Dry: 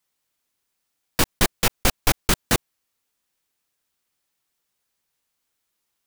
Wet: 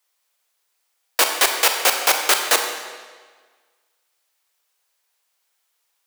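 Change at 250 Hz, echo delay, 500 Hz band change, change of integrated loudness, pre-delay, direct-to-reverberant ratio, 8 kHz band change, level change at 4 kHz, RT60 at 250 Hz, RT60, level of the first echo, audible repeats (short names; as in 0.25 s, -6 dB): -10.5 dB, none, +3.5 dB, +5.0 dB, 29 ms, 4.0 dB, +6.0 dB, +6.5 dB, 1.5 s, 1.5 s, none, none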